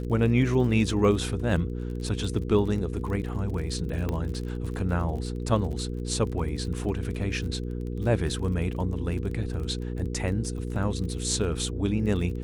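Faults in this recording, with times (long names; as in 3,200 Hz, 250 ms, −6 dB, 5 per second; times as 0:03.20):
surface crackle 37 per second −35 dBFS
mains hum 60 Hz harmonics 8 −32 dBFS
0:04.09: click −17 dBFS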